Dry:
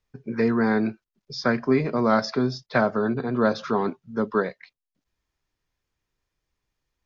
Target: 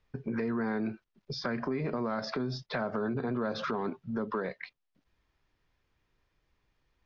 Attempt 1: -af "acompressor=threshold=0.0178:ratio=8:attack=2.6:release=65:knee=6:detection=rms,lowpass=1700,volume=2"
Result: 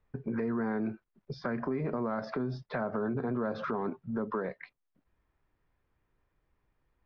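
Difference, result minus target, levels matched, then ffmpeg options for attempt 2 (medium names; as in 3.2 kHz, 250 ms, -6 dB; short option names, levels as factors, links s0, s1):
4 kHz band -12.0 dB
-af "acompressor=threshold=0.0178:ratio=8:attack=2.6:release=65:knee=6:detection=rms,lowpass=3800,volume=2"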